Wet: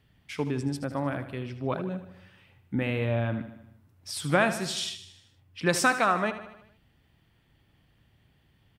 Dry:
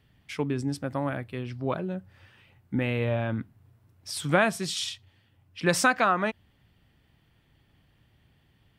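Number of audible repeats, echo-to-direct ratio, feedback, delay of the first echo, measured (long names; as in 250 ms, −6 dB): 5, −10.5 dB, 56%, 77 ms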